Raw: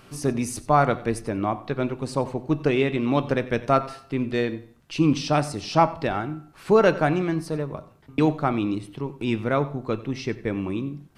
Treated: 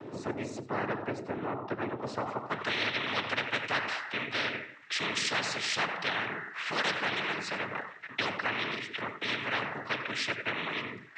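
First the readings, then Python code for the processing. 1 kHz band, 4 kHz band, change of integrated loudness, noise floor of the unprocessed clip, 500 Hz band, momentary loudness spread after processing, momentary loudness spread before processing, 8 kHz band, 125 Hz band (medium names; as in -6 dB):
-9.5 dB, +4.0 dB, -8.0 dB, -52 dBFS, -14.0 dB, 7 LU, 10 LU, -4.0 dB, -17.0 dB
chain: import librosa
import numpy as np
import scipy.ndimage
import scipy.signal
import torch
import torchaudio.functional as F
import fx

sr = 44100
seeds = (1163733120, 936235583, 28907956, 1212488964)

y = fx.noise_vocoder(x, sr, seeds[0], bands=12)
y = fx.filter_sweep_bandpass(y, sr, from_hz=360.0, to_hz=1900.0, start_s=1.92, end_s=2.72, q=4.4)
y = fx.spectral_comp(y, sr, ratio=4.0)
y = y * 10.0 ** (-2.0 / 20.0)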